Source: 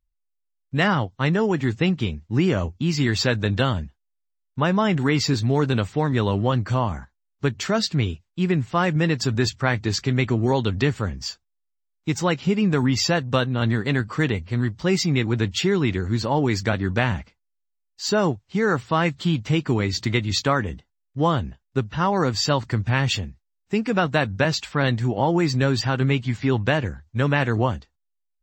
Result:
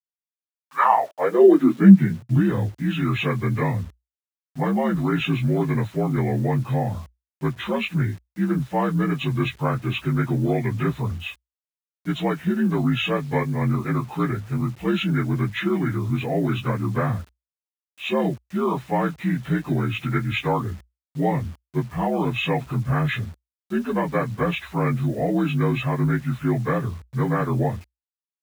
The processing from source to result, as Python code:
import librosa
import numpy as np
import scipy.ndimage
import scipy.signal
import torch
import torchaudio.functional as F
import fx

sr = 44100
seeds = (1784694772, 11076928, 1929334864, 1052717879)

y = fx.partial_stretch(x, sr, pct=80)
y = fx.quant_dither(y, sr, seeds[0], bits=8, dither='none')
y = fx.filter_sweep_highpass(y, sr, from_hz=2500.0, to_hz=60.0, start_s=0.17, end_s=2.73, q=6.1)
y = F.gain(torch.from_numpy(y), -1.0).numpy()